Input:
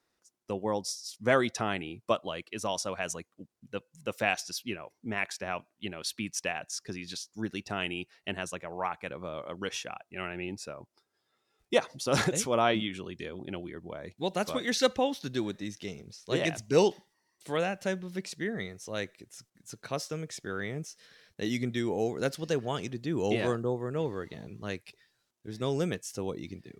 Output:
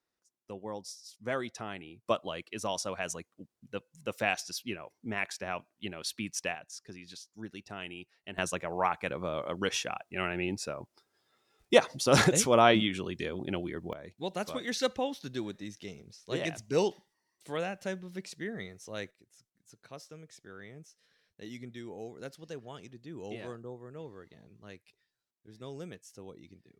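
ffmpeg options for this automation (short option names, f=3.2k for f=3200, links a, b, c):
-af "asetnsamples=n=441:p=0,asendcmd='2.06 volume volume -1.5dB;6.55 volume volume -8.5dB;8.38 volume volume 4dB;13.93 volume volume -4.5dB;19.11 volume volume -13dB',volume=-9dB"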